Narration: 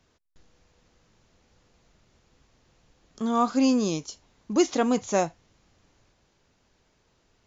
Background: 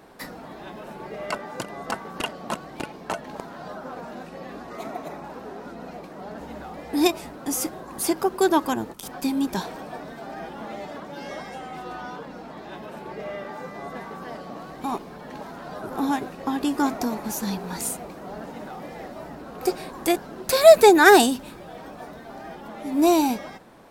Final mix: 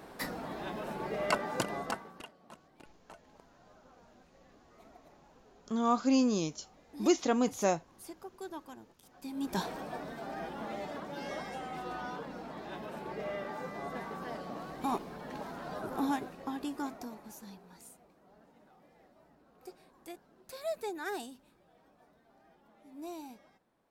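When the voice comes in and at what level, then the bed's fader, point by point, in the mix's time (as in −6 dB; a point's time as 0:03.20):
2.50 s, −5.0 dB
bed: 0:01.76 −0.5 dB
0:02.34 −24 dB
0:09.12 −24 dB
0:09.60 −4.5 dB
0:15.78 −4.5 dB
0:17.87 −25.5 dB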